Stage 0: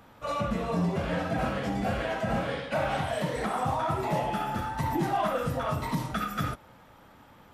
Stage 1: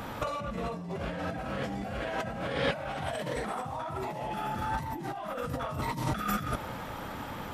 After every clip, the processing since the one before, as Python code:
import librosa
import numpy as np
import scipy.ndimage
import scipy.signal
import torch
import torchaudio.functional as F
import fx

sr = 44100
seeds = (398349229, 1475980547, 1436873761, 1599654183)

y = fx.over_compress(x, sr, threshold_db=-40.0, ratio=-1.0)
y = y * 10.0 ** (5.5 / 20.0)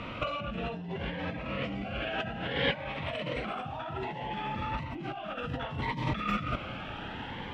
y = fx.lowpass_res(x, sr, hz=2800.0, q=3.0)
y = fx.notch_cascade(y, sr, direction='rising', hz=0.63)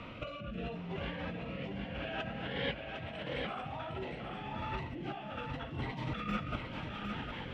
y = fx.rider(x, sr, range_db=10, speed_s=2.0)
y = fx.rotary_switch(y, sr, hz=0.75, then_hz=5.0, switch_at_s=4.48)
y = y + 10.0 ** (-5.5 / 20.0) * np.pad(y, (int(756 * sr / 1000.0), 0))[:len(y)]
y = y * 10.0 ** (-4.0 / 20.0)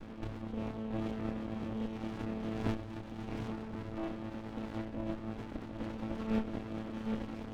y = fx.chord_vocoder(x, sr, chord='major triad', root=57)
y = fx.doubler(y, sr, ms=27.0, db=-6.0)
y = fx.running_max(y, sr, window=65)
y = y * 10.0 ** (3.5 / 20.0)